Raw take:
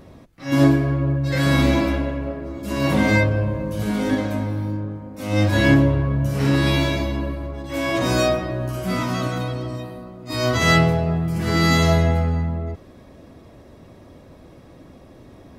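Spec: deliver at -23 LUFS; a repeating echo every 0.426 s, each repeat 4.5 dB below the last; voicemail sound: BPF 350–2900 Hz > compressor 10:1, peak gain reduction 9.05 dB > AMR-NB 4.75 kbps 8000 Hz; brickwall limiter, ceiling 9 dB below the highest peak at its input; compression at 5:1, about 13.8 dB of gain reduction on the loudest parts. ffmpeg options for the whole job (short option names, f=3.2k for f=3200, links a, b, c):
-af "acompressor=threshold=-26dB:ratio=5,alimiter=level_in=0.5dB:limit=-24dB:level=0:latency=1,volume=-0.5dB,highpass=350,lowpass=2.9k,aecho=1:1:426|852|1278|1704|2130|2556|2982|3408|3834:0.596|0.357|0.214|0.129|0.0772|0.0463|0.0278|0.0167|0.01,acompressor=threshold=-38dB:ratio=10,volume=22dB" -ar 8000 -c:a libopencore_amrnb -b:a 4750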